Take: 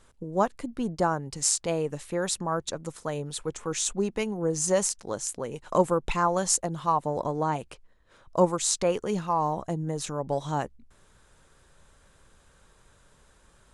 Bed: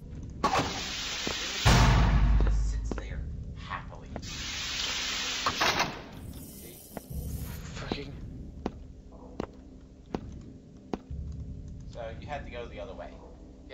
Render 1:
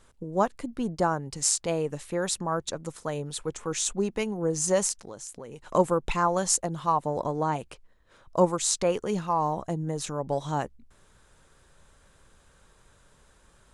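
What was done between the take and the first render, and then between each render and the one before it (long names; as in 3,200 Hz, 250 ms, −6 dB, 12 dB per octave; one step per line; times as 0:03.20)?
0:05.04–0:05.74: downward compressor 3 to 1, threshold −39 dBFS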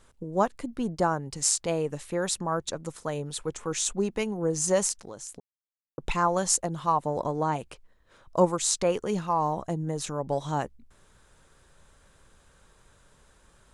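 0:05.40–0:05.98: silence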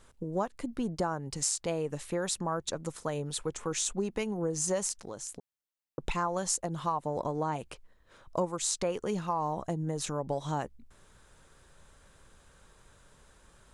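downward compressor 3 to 1, threshold −29 dBFS, peak gain reduction 11 dB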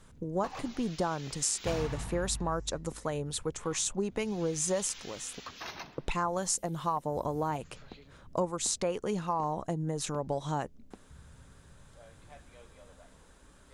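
mix in bed −16 dB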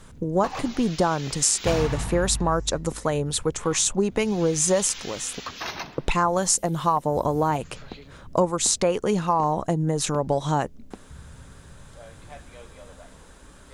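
level +9.5 dB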